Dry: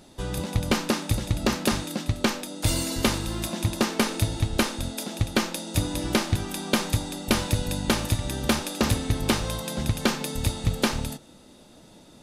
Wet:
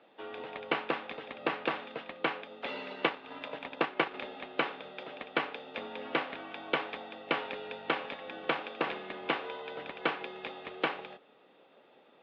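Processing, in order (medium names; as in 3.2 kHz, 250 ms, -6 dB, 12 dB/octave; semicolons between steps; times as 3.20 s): mistuned SSB -69 Hz 430–3100 Hz; 2.90–4.14 s: transient shaper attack +2 dB, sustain -8 dB; harmonic-percussive split percussive +3 dB; trim -5.5 dB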